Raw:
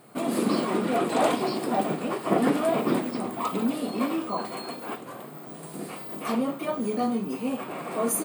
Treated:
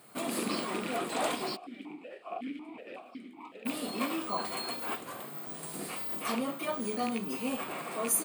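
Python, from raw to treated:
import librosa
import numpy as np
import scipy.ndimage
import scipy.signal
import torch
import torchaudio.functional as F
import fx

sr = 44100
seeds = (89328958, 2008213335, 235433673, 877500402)

y = fx.rattle_buzz(x, sr, strikes_db=-27.0, level_db=-25.0)
y = fx.tilt_shelf(y, sr, db=-5.0, hz=1200.0)
y = fx.rider(y, sr, range_db=3, speed_s=0.5)
y = fx.vowel_held(y, sr, hz=5.4, at=(1.55, 3.65), fade=0.02)
y = F.gain(torch.from_numpy(y), -4.0).numpy()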